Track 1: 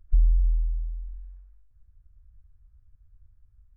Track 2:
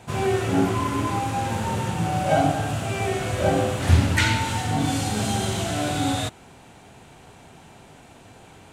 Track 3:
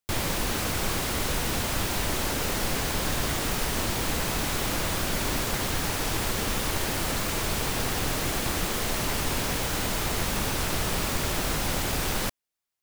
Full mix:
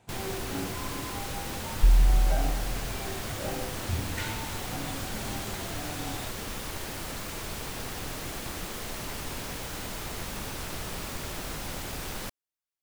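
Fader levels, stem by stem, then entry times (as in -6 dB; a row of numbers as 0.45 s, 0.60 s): +0.5 dB, -15.0 dB, -8.5 dB; 1.70 s, 0.00 s, 0.00 s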